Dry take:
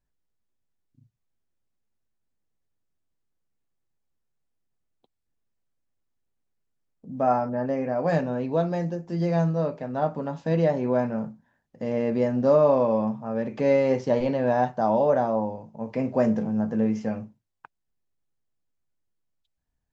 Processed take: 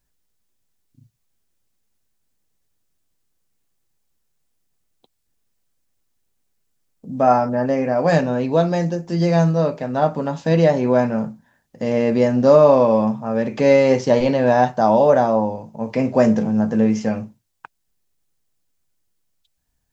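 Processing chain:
high-shelf EQ 3,300 Hz +9.5 dB
level +7 dB

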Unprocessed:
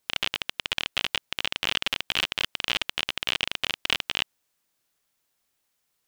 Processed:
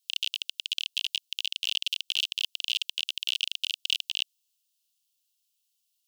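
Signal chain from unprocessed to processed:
Chebyshev high-pass filter 2,800 Hz, order 5

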